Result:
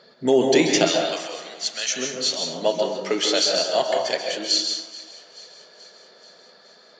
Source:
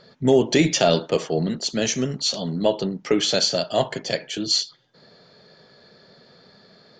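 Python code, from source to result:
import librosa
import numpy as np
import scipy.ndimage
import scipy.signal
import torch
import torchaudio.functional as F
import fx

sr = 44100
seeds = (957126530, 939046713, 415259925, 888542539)

y = fx.highpass(x, sr, hz=fx.steps((0.0, 270.0), (0.85, 1300.0), (1.95, 420.0)), slope=12)
y = fx.echo_thinned(y, sr, ms=431, feedback_pct=63, hz=880.0, wet_db=-18.5)
y = fx.rev_plate(y, sr, seeds[0], rt60_s=1.0, hf_ratio=0.45, predelay_ms=120, drr_db=1.5)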